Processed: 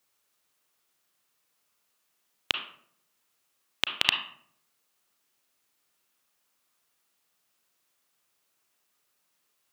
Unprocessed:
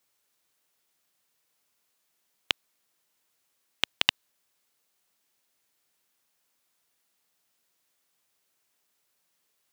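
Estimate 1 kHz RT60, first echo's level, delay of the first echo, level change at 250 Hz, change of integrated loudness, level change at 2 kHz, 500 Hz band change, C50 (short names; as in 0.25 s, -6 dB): 0.55 s, none, none, +0.5 dB, +0.5 dB, +1.5 dB, +0.5 dB, 6.5 dB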